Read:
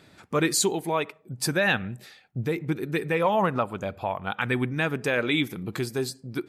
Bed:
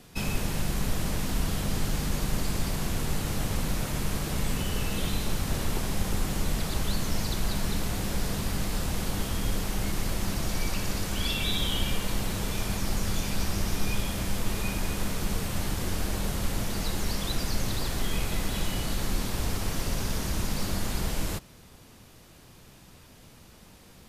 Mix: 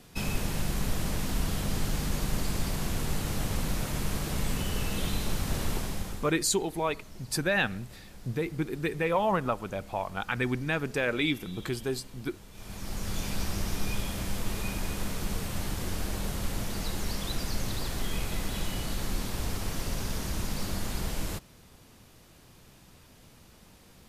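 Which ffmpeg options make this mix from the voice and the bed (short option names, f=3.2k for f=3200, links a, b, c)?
-filter_complex "[0:a]adelay=5900,volume=-3.5dB[a];[1:a]volume=15.5dB,afade=t=out:st=5.71:d=0.63:silence=0.11885,afade=t=in:st=12.52:d=0.73:silence=0.141254[b];[a][b]amix=inputs=2:normalize=0"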